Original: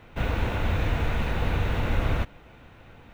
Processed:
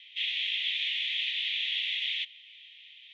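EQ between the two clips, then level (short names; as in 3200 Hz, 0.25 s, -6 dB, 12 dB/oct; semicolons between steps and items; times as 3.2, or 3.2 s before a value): steep high-pass 1900 Hz 96 dB/oct; synth low-pass 3300 Hz, resonance Q 8.3; high shelf 2500 Hz +10 dB; -6.0 dB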